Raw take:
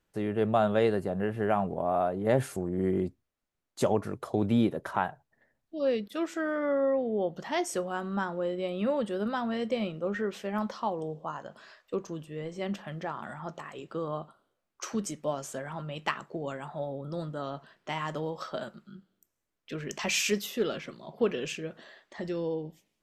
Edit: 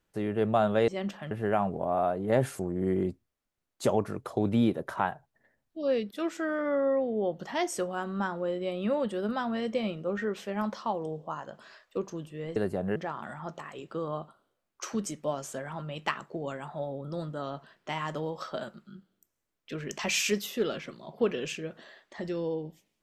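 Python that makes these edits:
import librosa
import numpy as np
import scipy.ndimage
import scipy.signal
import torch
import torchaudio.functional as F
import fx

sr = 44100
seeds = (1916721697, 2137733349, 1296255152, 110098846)

y = fx.edit(x, sr, fx.swap(start_s=0.88, length_s=0.4, other_s=12.53, other_length_s=0.43), tone=tone)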